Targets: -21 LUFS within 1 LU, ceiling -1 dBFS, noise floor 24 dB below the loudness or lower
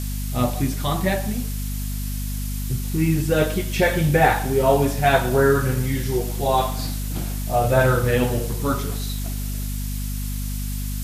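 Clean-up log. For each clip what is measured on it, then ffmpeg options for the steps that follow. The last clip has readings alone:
hum 50 Hz; harmonics up to 250 Hz; hum level -24 dBFS; noise floor -27 dBFS; noise floor target -47 dBFS; loudness -22.5 LUFS; peak -3.0 dBFS; loudness target -21.0 LUFS
-> -af "bandreject=f=50:t=h:w=6,bandreject=f=100:t=h:w=6,bandreject=f=150:t=h:w=6,bandreject=f=200:t=h:w=6,bandreject=f=250:t=h:w=6"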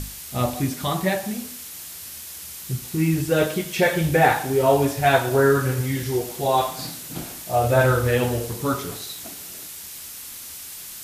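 hum none; noise floor -38 dBFS; noise floor target -46 dBFS
-> -af "afftdn=nr=8:nf=-38"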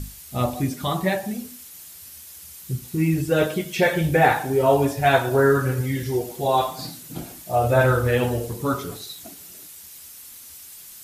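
noise floor -43 dBFS; noise floor target -46 dBFS
-> -af "afftdn=nr=6:nf=-43"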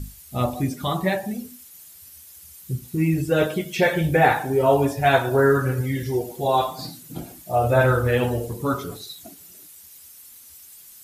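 noise floor -46 dBFS; loudness -22.0 LUFS; peak -4.5 dBFS; loudness target -21.0 LUFS
-> -af "volume=1dB"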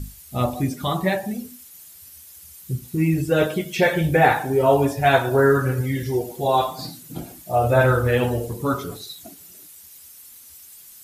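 loudness -21.0 LUFS; peak -3.5 dBFS; noise floor -45 dBFS

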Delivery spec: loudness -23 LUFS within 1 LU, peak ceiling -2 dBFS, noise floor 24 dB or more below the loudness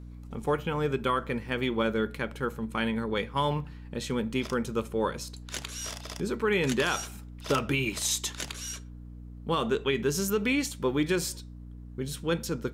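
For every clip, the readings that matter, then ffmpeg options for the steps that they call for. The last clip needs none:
hum 60 Hz; harmonics up to 300 Hz; hum level -41 dBFS; loudness -30.0 LUFS; peak -14.0 dBFS; loudness target -23.0 LUFS
-> -af "bandreject=f=60:t=h:w=6,bandreject=f=120:t=h:w=6,bandreject=f=180:t=h:w=6,bandreject=f=240:t=h:w=6,bandreject=f=300:t=h:w=6"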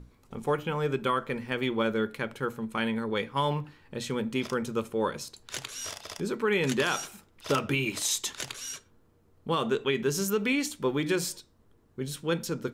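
hum none; loudness -30.0 LUFS; peak -14.0 dBFS; loudness target -23.0 LUFS
-> -af "volume=7dB"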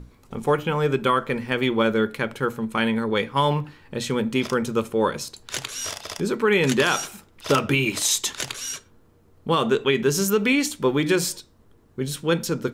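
loudness -23.0 LUFS; peak -7.0 dBFS; noise floor -56 dBFS

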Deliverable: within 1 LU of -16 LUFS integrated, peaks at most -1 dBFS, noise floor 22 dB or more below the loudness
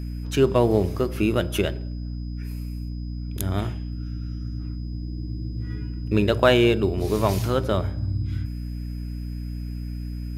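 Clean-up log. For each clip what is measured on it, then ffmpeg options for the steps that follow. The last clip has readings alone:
hum 60 Hz; harmonics up to 300 Hz; hum level -28 dBFS; steady tone 5000 Hz; tone level -54 dBFS; loudness -25.5 LUFS; peak -4.5 dBFS; loudness target -16.0 LUFS
-> -af "bandreject=f=60:t=h:w=6,bandreject=f=120:t=h:w=6,bandreject=f=180:t=h:w=6,bandreject=f=240:t=h:w=6,bandreject=f=300:t=h:w=6"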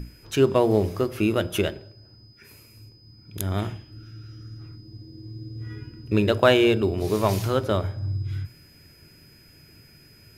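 hum none; steady tone 5000 Hz; tone level -54 dBFS
-> -af "bandreject=f=5k:w=30"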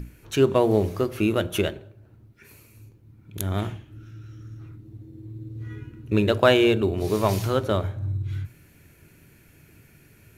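steady tone none; loudness -23.5 LUFS; peak -3.5 dBFS; loudness target -16.0 LUFS
-> -af "volume=7.5dB,alimiter=limit=-1dB:level=0:latency=1"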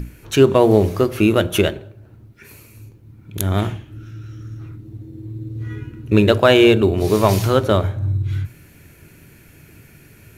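loudness -16.5 LUFS; peak -1.0 dBFS; noise floor -47 dBFS

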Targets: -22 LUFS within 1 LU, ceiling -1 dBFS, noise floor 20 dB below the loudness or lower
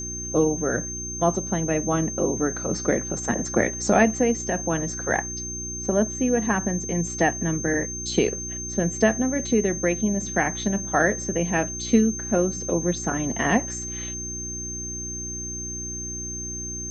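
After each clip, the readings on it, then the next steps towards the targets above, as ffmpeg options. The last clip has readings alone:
hum 60 Hz; harmonics up to 360 Hz; hum level -35 dBFS; steady tone 6300 Hz; tone level -31 dBFS; loudness -24.5 LUFS; peak -5.5 dBFS; loudness target -22.0 LUFS
-> -af "bandreject=f=60:t=h:w=4,bandreject=f=120:t=h:w=4,bandreject=f=180:t=h:w=4,bandreject=f=240:t=h:w=4,bandreject=f=300:t=h:w=4,bandreject=f=360:t=h:w=4"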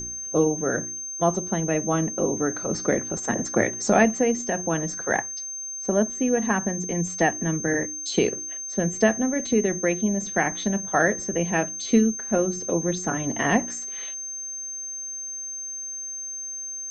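hum none; steady tone 6300 Hz; tone level -31 dBFS
-> -af "bandreject=f=6.3k:w=30"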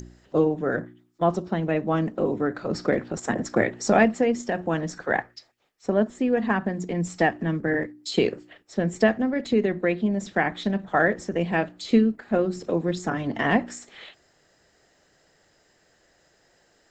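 steady tone none; loudness -25.0 LUFS; peak -5.5 dBFS; loudness target -22.0 LUFS
-> -af "volume=3dB"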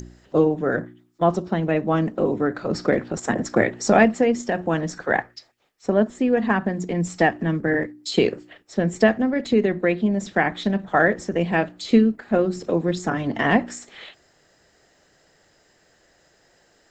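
loudness -22.0 LUFS; peak -2.5 dBFS; noise floor -61 dBFS

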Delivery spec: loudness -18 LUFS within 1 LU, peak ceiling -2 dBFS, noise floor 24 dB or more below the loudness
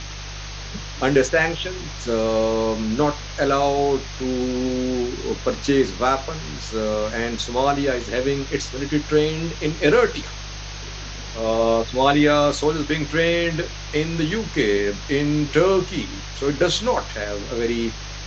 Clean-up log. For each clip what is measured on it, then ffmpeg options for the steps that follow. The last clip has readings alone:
hum 50 Hz; harmonics up to 150 Hz; hum level -32 dBFS; noise floor -33 dBFS; noise floor target -46 dBFS; loudness -21.5 LUFS; peak -4.0 dBFS; loudness target -18.0 LUFS
-> -af "bandreject=f=50:t=h:w=4,bandreject=f=100:t=h:w=4,bandreject=f=150:t=h:w=4"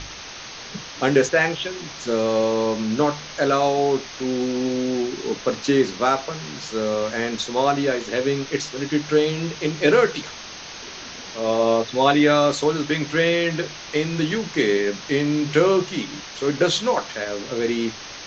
hum none; noise floor -37 dBFS; noise floor target -46 dBFS
-> -af "afftdn=nr=9:nf=-37"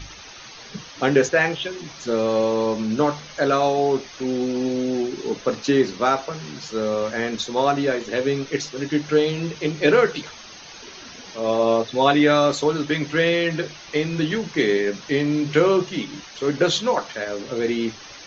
noise floor -41 dBFS; noise floor target -46 dBFS
-> -af "afftdn=nr=6:nf=-41"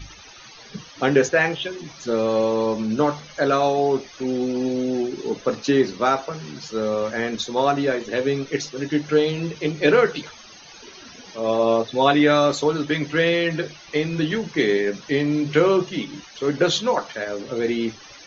noise floor -44 dBFS; noise floor target -46 dBFS
-> -af "afftdn=nr=6:nf=-44"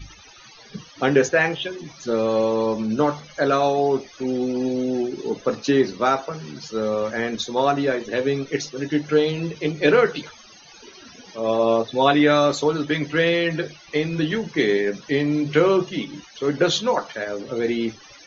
noise floor -47 dBFS; loudness -22.0 LUFS; peak -3.5 dBFS; loudness target -18.0 LUFS
-> -af "volume=4dB,alimiter=limit=-2dB:level=0:latency=1"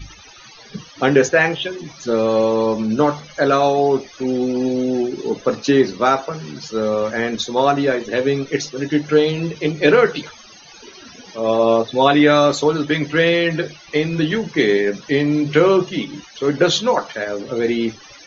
loudness -18.0 LUFS; peak -2.0 dBFS; noise floor -43 dBFS

